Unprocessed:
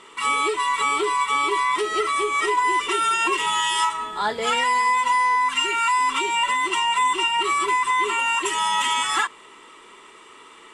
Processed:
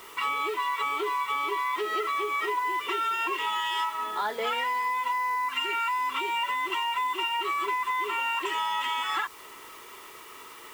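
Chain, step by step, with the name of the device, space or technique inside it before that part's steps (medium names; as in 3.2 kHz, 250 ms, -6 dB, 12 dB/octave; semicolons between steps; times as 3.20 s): baby monitor (band-pass 310–3500 Hz; compression, threshold -26 dBFS, peak gain reduction 9 dB; white noise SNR 22 dB); 5.12–5.54 s: band-stop 3.4 kHz, Q 8.3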